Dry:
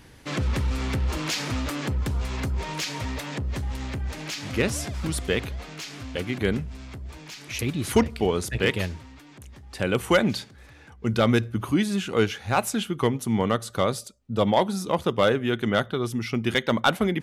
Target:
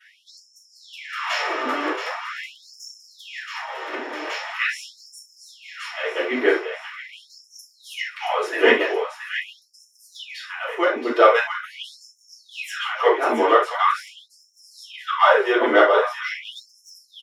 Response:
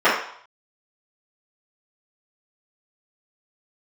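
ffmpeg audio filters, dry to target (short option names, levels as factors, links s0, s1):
-filter_complex "[0:a]aeval=exprs='if(lt(val(0),0),0.708*val(0),val(0))':c=same,aecho=1:1:676|1352|2028|2704|3380|4056:0.398|0.203|0.104|0.0528|0.0269|0.0137[s0];[1:a]atrim=start_sample=2205,atrim=end_sample=3969[s1];[s0][s1]afir=irnorm=-1:irlink=0,afftfilt=real='re*gte(b*sr/1024,250*pow(5300/250,0.5+0.5*sin(2*PI*0.43*pts/sr)))':imag='im*gte(b*sr/1024,250*pow(5300/250,0.5+0.5*sin(2*PI*0.43*pts/sr)))':win_size=1024:overlap=0.75,volume=0.211"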